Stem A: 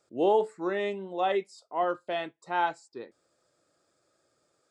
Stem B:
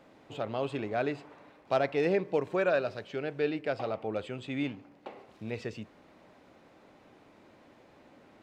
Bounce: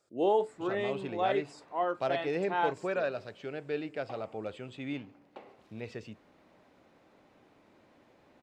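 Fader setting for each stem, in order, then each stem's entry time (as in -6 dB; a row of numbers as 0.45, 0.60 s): -3.0, -4.5 dB; 0.00, 0.30 s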